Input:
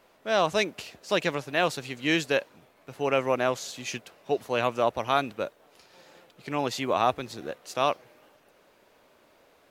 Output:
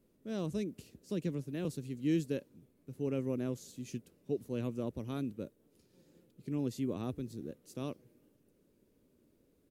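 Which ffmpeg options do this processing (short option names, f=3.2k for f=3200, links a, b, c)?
-filter_complex "[0:a]firequalizer=gain_entry='entry(250,0);entry(480,-11);entry(700,-26);entry(9200,-9)':delay=0.05:min_phase=1,asettb=1/sr,asplit=3[a][b][c];[a]atrim=end=0.504[d];[b]atrim=start=0.5:end=1.65,asetpts=PTS-STARTPTS,afade=t=in:d=0.004:c=qsin,afade=t=out:st=1.146:d=0.004:c=qsin,acrossover=split=330[e][f];[f]acompressor=threshold=-39dB:ratio=6[g];[e][g]amix=inputs=2:normalize=0[h];[c]atrim=start=1.646[i];[d][h]acrossfade=d=0.004:c1=hsin:c2=qsin[j];[j][i]acrossfade=d=0.004:c1=qsin:c2=hsin"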